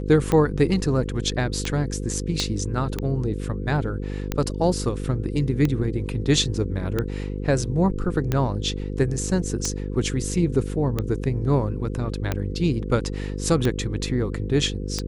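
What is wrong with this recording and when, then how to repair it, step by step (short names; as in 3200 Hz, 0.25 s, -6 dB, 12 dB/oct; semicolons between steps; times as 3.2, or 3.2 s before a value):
buzz 50 Hz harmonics 10 -29 dBFS
tick 45 rpm -10 dBFS
2.4 pop -11 dBFS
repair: de-click; de-hum 50 Hz, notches 10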